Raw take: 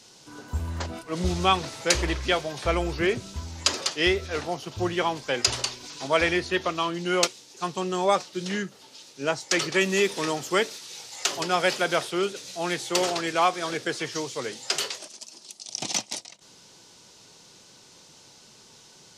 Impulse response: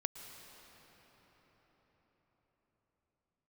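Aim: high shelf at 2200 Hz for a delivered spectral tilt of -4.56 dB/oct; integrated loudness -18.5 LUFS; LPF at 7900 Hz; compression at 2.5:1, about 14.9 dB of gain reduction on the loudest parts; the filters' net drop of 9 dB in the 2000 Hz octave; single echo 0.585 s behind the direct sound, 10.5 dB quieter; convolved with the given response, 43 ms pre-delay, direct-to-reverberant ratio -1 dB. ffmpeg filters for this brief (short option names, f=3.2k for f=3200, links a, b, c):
-filter_complex "[0:a]lowpass=7.9k,equalizer=f=2k:t=o:g=-7,highshelf=f=2.2k:g=-8,acompressor=threshold=-43dB:ratio=2.5,aecho=1:1:585:0.299,asplit=2[a][b];[1:a]atrim=start_sample=2205,adelay=43[c];[b][c]afir=irnorm=-1:irlink=0,volume=1dB[d];[a][d]amix=inputs=2:normalize=0,volume=20dB"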